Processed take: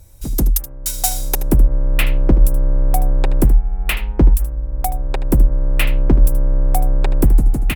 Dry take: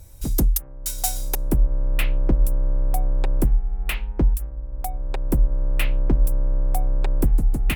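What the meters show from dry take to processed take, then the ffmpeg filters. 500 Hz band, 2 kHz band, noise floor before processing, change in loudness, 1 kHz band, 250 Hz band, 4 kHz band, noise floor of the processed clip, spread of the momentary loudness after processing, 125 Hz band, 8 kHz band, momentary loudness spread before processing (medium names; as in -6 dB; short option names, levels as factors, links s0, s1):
+7.0 dB, +6.5 dB, -35 dBFS, +6.5 dB, +7.5 dB, +7.0 dB, +6.5 dB, -29 dBFS, 7 LU, +6.5 dB, +6.0 dB, 7 LU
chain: -af "dynaudnorm=f=180:g=5:m=3.76,aecho=1:1:77:0.2"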